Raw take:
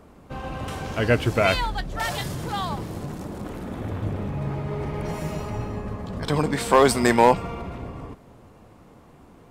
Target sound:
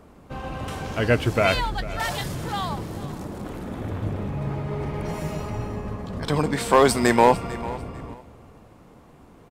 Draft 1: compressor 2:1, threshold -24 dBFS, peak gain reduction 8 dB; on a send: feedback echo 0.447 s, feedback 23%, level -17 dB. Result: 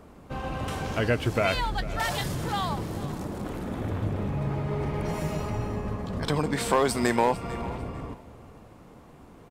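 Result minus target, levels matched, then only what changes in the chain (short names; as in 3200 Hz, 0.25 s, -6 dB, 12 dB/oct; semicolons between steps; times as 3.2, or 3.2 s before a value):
compressor: peak gain reduction +8 dB
remove: compressor 2:1, threshold -24 dBFS, peak gain reduction 8 dB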